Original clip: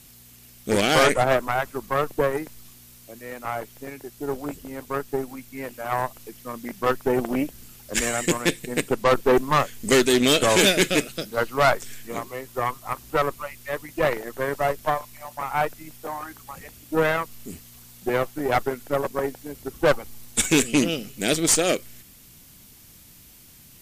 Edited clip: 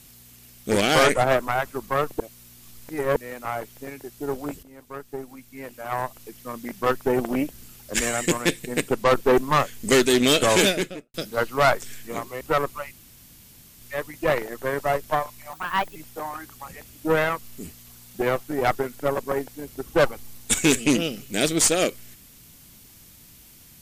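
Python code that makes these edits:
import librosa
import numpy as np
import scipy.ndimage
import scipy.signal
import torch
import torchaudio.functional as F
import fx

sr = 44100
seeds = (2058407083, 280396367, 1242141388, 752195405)

y = fx.studio_fade_out(x, sr, start_s=10.54, length_s=0.6)
y = fx.edit(y, sr, fx.reverse_span(start_s=2.2, length_s=0.96),
    fx.fade_in_from(start_s=4.63, length_s=1.92, floor_db=-13.0),
    fx.cut(start_s=12.41, length_s=0.64),
    fx.insert_room_tone(at_s=13.56, length_s=0.89),
    fx.speed_span(start_s=15.28, length_s=0.55, speed=1.29), tone=tone)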